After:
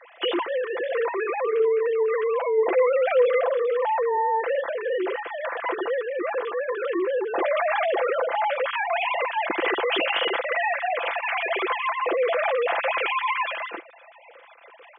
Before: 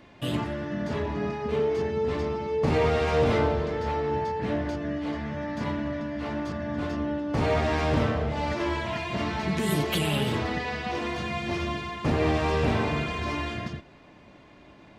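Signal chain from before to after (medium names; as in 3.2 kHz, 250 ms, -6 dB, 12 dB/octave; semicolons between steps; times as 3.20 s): formants replaced by sine waves; bass shelf 480 Hz -4 dB; comb 5.9 ms, depth 49%; in parallel at +1 dB: compressor with a negative ratio -31 dBFS, ratio -1; on the sum: brick-wall FIR high-pass 190 Hz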